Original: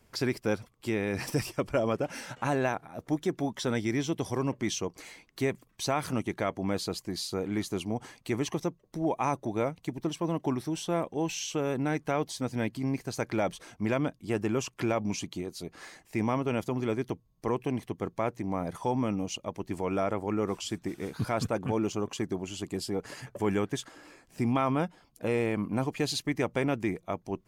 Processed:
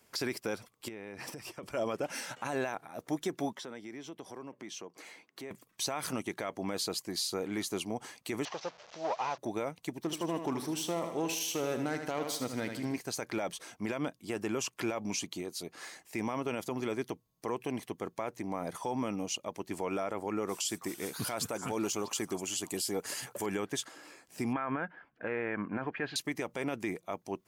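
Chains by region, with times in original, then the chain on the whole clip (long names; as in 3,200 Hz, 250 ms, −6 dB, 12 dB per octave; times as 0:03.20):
0:00.88–0:01.63: high-shelf EQ 3,600 Hz −10.5 dB + downward compressor 12 to 1, threshold −37 dBFS
0:03.54–0:05.51: high-pass filter 160 Hz + high-shelf EQ 3,300 Hz −11 dB + downward compressor 2.5 to 1, threshold −43 dBFS
0:08.45–0:09.38: linear delta modulator 32 kbit/s, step −45 dBFS + low shelf with overshoot 430 Hz −11.5 dB, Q 1.5
0:10.00–0:12.98: phase distortion by the signal itself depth 0.083 ms + repeating echo 77 ms, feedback 49%, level −9.5 dB
0:20.49–0:23.46: high-shelf EQ 5,900 Hz +12 dB + echo through a band-pass that steps 322 ms, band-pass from 1,200 Hz, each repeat 1.4 octaves, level −10 dB
0:24.53–0:26.16: low-pass filter 2,500 Hz 24 dB per octave + parametric band 1,600 Hz +14 dB 0.4 octaves
whole clip: high-pass filter 330 Hz 6 dB per octave; high-shelf EQ 5,000 Hz +5.5 dB; brickwall limiter −23 dBFS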